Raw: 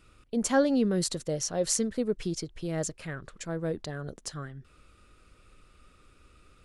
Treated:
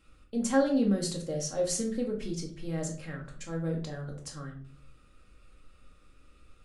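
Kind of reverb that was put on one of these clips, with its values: shoebox room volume 420 m³, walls furnished, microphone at 2.2 m; gain -6.5 dB

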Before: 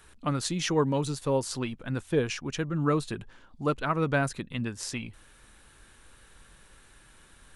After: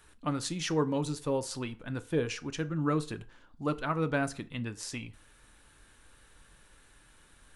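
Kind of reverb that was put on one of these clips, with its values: FDN reverb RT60 0.42 s, low-frequency decay 0.75×, high-frequency decay 0.7×, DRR 11 dB; gain -4 dB

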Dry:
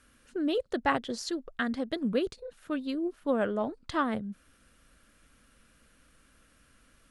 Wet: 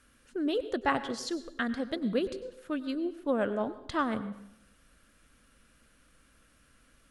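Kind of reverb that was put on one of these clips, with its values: plate-style reverb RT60 0.76 s, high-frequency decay 0.8×, pre-delay 85 ms, DRR 13 dB; gain -1 dB

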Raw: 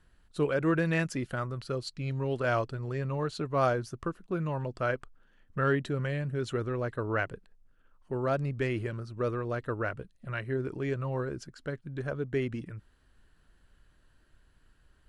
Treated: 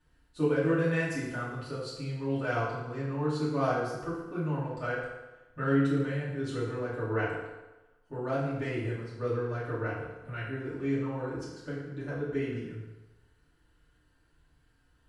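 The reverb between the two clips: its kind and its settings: FDN reverb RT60 1.1 s, low-frequency decay 0.85×, high-frequency decay 0.8×, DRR -9.5 dB; gain -11 dB

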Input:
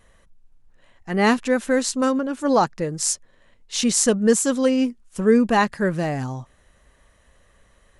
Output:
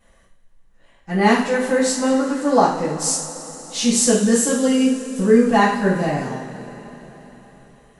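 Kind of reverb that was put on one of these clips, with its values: two-slope reverb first 0.48 s, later 4.2 s, from -18 dB, DRR -9.5 dB; gain -7.5 dB

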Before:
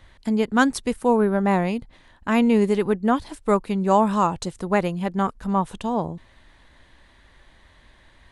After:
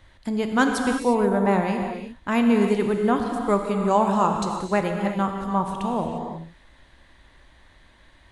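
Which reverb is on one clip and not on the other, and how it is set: non-linear reverb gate 0.38 s flat, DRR 3 dB; gain -2 dB

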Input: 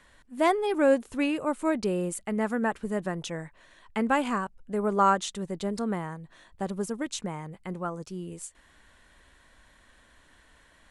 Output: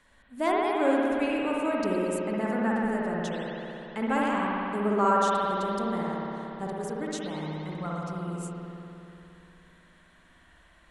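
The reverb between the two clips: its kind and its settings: spring tank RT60 3.2 s, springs 58 ms, chirp 60 ms, DRR -4.5 dB; gain -5 dB

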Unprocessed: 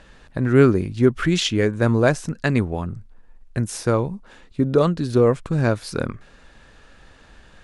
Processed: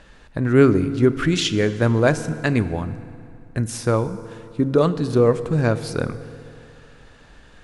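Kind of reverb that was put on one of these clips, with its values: FDN reverb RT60 2.6 s, high-frequency decay 0.7×, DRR 12 dB

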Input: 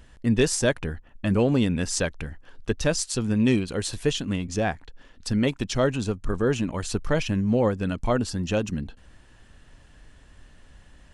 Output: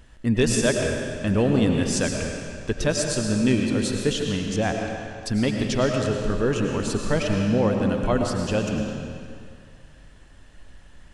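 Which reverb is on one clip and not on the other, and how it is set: digital reverb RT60 2.2 s, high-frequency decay 0.9×, pre-delay 65 ms, DRR 2 dB

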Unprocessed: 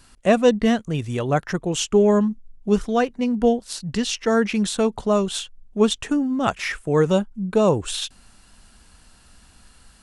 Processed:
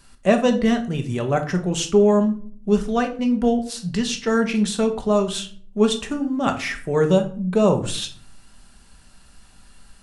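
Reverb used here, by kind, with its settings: shoebox room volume 440 m³, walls furnished, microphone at 1.2 m; gain -1.5 dB

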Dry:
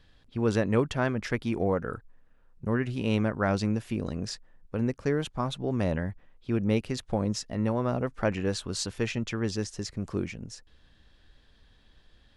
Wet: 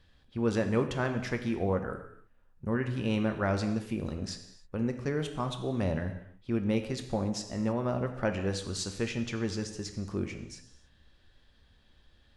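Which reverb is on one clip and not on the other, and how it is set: non-linear reverb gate 0.33 s falling, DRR 6 dB; gain -3.5 dB

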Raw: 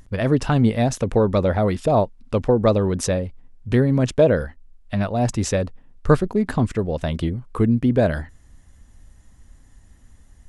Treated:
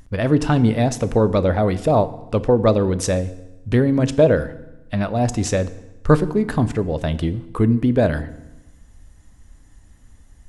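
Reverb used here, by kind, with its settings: FDN reverb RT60 1 s, low-frequency decay 1.2×, high-frequency decay 0.85×, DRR 12.5 dB; gain +1 dB

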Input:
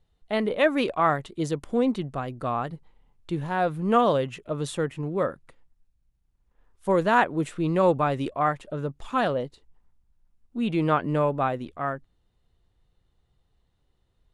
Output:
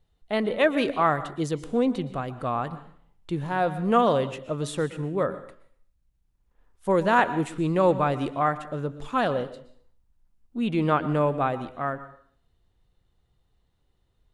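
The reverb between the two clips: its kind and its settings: plate-style reverb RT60 0.54 s, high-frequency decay 1×, pre-delay 0.105 s, DRR 14 dB

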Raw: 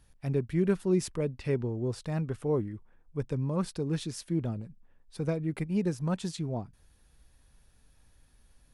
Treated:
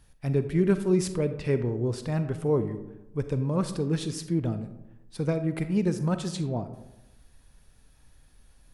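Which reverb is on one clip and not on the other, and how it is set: digital reverb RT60 1 s, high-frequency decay 0.4×, pre-delay 5 ms, DRR 9.5 dB; gain +3.5 dB

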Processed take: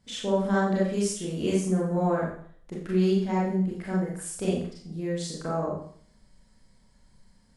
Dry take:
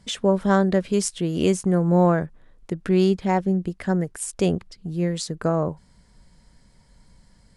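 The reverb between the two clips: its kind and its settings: Schroeder reverb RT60 0.55 s, combs from 29 ms, DRR -6 dB; gain -12 dB

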